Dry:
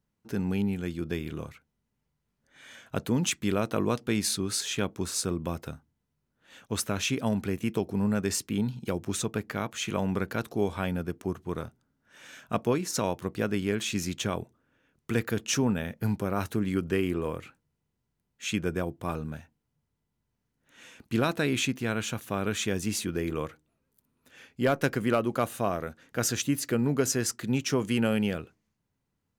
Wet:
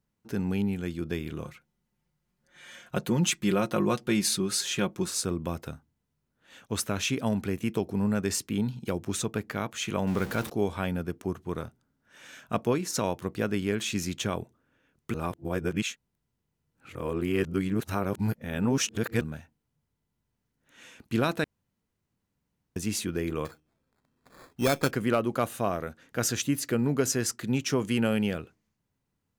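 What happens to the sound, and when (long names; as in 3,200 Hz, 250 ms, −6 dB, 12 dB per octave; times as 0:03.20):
0:01.44–0:05.10: comb filter 5.6 ms
0:10.07–0:10.50: converter with a step at zero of −34.5 dBFS
0:15.14–0:19.21: reverse
0:21.44–0:22.76: fill with room tone
0:23.45–0:24.91: sample-rate reduction 2,900 Hz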